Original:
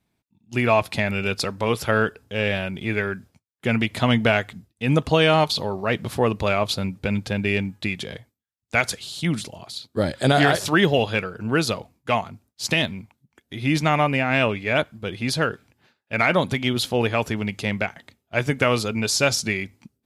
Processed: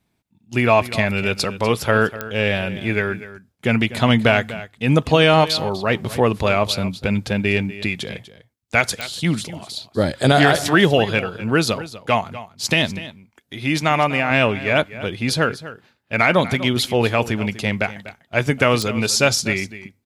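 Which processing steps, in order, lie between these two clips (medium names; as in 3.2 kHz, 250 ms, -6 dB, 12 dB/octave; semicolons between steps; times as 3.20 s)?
12.99–14.31 s: bass shelf 320 Hz -6 dB; delay 246 ms -15.5 dB; clicks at 2.21/9.01/18.82 s, -12 dBFS; trim +3.5 dB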